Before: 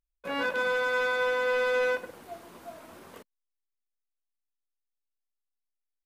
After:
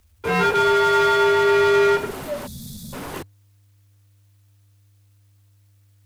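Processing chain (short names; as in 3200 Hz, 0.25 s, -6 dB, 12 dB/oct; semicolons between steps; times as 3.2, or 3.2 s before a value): frequency shift -100 Hz; spectral delete 2.47–2.93, 240–3300 Hz; power-law curve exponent 0.7; gain +8 dB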